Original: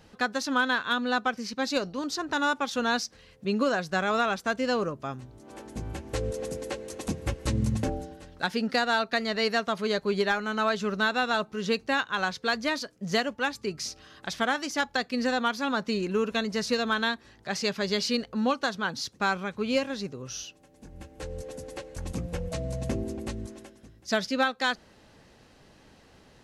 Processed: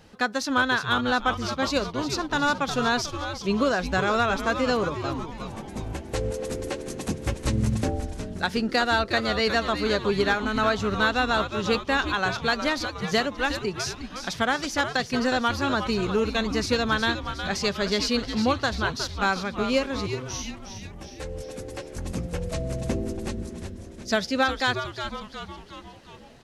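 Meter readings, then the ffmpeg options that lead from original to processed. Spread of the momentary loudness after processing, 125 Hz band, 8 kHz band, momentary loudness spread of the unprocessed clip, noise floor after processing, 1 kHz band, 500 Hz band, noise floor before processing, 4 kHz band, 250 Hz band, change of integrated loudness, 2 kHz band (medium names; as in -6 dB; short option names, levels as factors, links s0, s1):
13 LU, +5.0 dB, +3.0 dB, 12 LU, -43 dBFS, +3.5 dB, +3.0 dB, -57 dBFS, +3.5 dB, +3.0 dB, +3.0 dB, +3.0 dB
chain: -filter_complex "[0:a]asplit=8[s0][s1][s2][s3][s4][s5][s6][s7];[s1]adelay=362,afreqshift=-150,volume=0.376[s8];[s2]adelay=724,afreqshift=-300,volume=0.211[s9];[s3]adelay=1086,afreqshift=-450,volume=0.117[s10];[s4]adelay=1448,afreqshift=-600,volume=0.0661[s11];[s5]adelay=1810,afreqshift=-750,volume=0.0372[s12];[s6]adelay=2172,afreqshift=-900,volume=0.0207[s13];[s7]adelay=2534,afreqshift=-1050,volume=0.0116[s14];[s0][s8][s9][s10][s11][s12][s13][s14]amix=inputs=8:normalize=0,volume=1.33"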